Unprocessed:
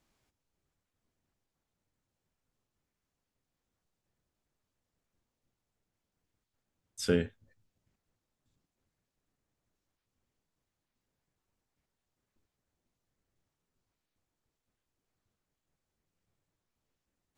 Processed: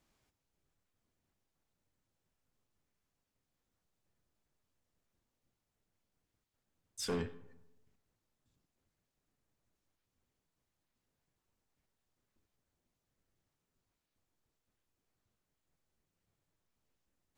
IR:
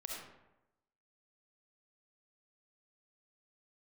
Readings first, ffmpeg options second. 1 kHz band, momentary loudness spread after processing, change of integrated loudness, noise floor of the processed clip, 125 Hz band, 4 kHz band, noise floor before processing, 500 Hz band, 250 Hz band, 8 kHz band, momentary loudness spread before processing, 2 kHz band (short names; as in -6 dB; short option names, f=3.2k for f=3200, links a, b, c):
+1.5 dB, 11 LU, -7.5 dB, under -85 dBFS, -8.0 dB, -3.0 dB, under -85 dBFS, -8.5 dB, -8.5 dB, -2.0 dB, 15 LU, -8.5 dB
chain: -filter_complex "[0:a]asoftclip=type=tanh:threshold=-30.5dB,asplit=2[a][b];[1:a]atrim=start_sample=2205[c];[b][c]afir=irnorm=-1:irlink=0,volume=-12dB[d];[a][d]amix=inputs=2:normalize=0,volume=-2dB"